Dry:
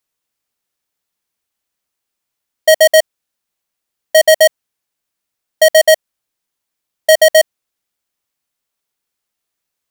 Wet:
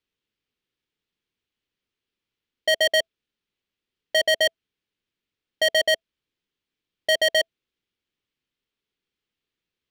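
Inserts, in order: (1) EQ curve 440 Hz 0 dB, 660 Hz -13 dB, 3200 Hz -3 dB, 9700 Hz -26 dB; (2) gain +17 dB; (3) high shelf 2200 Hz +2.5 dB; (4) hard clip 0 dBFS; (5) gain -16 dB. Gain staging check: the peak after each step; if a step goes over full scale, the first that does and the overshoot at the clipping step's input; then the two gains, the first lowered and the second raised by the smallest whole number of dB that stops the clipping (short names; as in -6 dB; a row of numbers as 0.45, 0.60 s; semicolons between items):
-8.5, +8.5, +9.0, 0.0, -16.0 dBFS; step 2, 9.0 dB; step 2 +8 dB, step 5 -7 dB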